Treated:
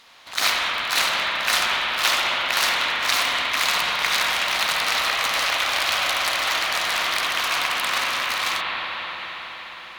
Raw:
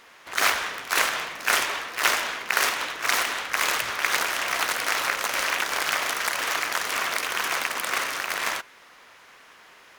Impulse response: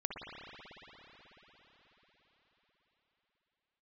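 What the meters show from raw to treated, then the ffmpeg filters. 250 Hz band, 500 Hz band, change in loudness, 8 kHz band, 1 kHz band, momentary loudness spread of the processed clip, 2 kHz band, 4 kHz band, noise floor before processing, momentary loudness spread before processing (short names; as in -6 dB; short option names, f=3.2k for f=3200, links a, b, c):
+1.0 dB, +1.5 dB, +3.5 dB, +0.5 dB, +3.0 dB, 7 LU, +2.5 dB, +7.5 dB, -52 dBFS, 4 LU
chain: -filter_complex "[0:a]equalizer=f=400:t=o:w=0.67:g=-9,equalizer=f=1.6k:t=o:w=0.67:g=-4,equalizer=f=4k:t=o:w=0.67:g=9[a];[1:a]atrim=start_sample=2205,asetrate=40572,aresample=44100[b];[a][b]afir=irnorm=-1:irlink=0,volume=1dB"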